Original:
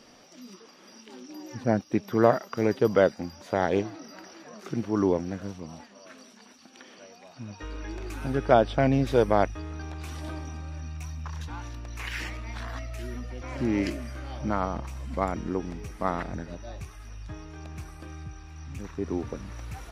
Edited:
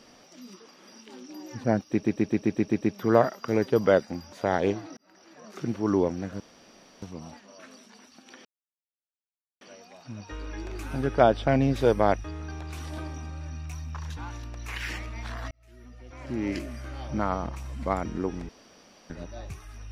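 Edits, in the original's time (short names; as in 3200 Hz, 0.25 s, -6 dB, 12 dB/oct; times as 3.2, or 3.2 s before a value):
1.9 stutter 0.13 s, 8 plays
4.06–4.68 fade in
5.49 insert room tone 0.62 s
6.92 insert silence 1.16 s
12.82–14.26 fade in
15.8–16.41 room tone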